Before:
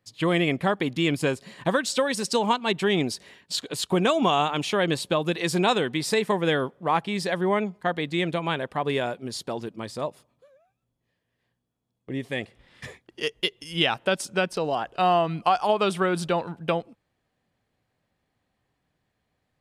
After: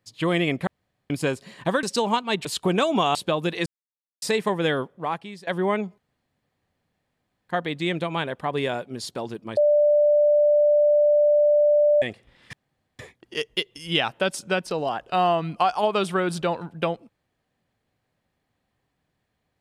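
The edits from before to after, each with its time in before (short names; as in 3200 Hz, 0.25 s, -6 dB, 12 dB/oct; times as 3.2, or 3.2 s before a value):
0.67–1.1 room tone
1.83–2.2 cut
2.82–3.72 cut
4.42–4.98 cut
5.49–6.05 mute
6.63–7.3 fade out, to -22 dB
7.81 insert room tone 1.51 s
9.89–12.34 bleep 591 Hz -14.5 dBFS
12.85 insert room tone 0.46 s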